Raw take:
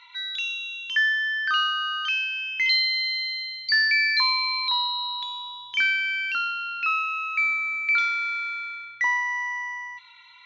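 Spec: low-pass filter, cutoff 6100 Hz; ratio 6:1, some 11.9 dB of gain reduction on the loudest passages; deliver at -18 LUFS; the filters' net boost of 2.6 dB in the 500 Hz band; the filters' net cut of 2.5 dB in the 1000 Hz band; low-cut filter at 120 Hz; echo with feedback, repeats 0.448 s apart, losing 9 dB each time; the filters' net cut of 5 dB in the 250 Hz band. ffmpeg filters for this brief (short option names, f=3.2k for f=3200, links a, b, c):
-af "highpass=120,lowpass=6.1k,equalizer=f=250:t=o:g=-6.5,equalizer=f=500:t=o:g=6,equalizer=f=1k:t=o:g=-4,acompressor=threshold=-32dB:ratio=6,aecho=1:1:448|896|1344|1792:0.355|0.124|0.0435|0.0152,volume=14dB"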